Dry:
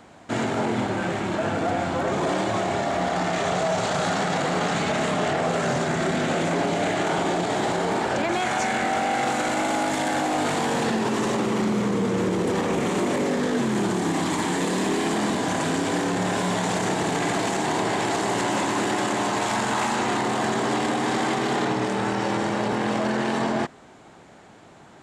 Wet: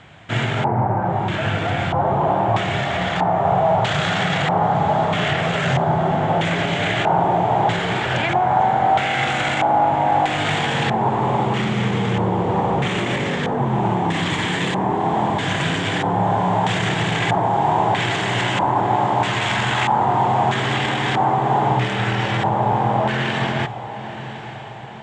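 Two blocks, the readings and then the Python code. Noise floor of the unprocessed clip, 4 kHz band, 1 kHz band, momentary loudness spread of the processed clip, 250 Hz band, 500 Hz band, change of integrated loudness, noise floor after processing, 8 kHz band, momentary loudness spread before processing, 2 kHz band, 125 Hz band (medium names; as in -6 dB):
-48 dBFS, +5.5 dB, +7.5 dB, 4 LU, +0.5 dB, +2.5 dB, +5.0 dB, -31 dBFS, -5.5 dB, 1 LU, +5.0 dB, +9.5 dB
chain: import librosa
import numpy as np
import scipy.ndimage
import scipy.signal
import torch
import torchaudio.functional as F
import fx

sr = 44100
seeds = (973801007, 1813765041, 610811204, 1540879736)

y = fx.graphic_eq(x, sr, hz=(125, 250, 500, 1000, 2000, 4000, 8000), db=(10, -10, -4, -4, 3, -11, 8))
y = fx.filter_lfo_lowpass(y, sr, shape='square', hz=0.78, low_hz=870.0, high_hz=3400.0, q=4.0)
y = fx.echo_diffused(y, sr, ms=985, feedback_pct=51, wet_db=-13)
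y = y * librosa.db_to_amplitude(5.0)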